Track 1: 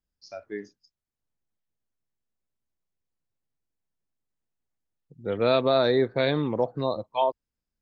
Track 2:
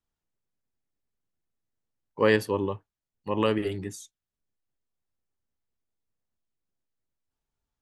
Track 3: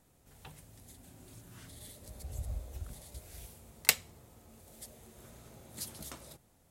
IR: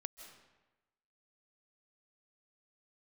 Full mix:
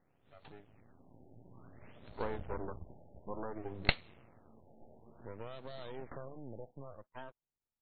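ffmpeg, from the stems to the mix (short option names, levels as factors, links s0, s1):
-filter_complex "[0:a]acompressor=threshold=0.0501:ratio=12,volume=0.158,asplit=2[s0][s1];[1:a]highpass=f=66:w=0.5412,highpass=f=66:w=1.3066,acompressor=threshold=0.0316:ratio=3,lowpass=f=1400:w=0.5412,lowpass=f=1400:w=1.3066,volume=0.422[s2];[2:a]highpass=100,volume=0.891,asplit=2[s3][s4];[s4]volume=0.1[s5];[s1]apad=whole_len=295815[s6];[s3][s6]sidechaincompress=threshold=0.00178:ratio=8:attack=31:release=117[s7];[3:a]atrim=start_sample=2205[s8];[s5][s8]afir=irnorm=-1:irlink=0[s9];[s0][s2][s7][s9]amix=inputs=4:normalize=0,dynaudnorm=f=450:g=7:m=2,aeval=exprs='max(val(0),0)':c=same,afftfilt=real='re*lt(b*sr/1024,870*pow(4500/870,0.5+0.5*sin(2*PI*0.57*pts/sr)))':imag='im*lt(b*sr/1024,870*pow(4500/870,0.5+0.5*sin(2*PI*0.57*pts/sr)))':win_size=1024:overlap=0.75"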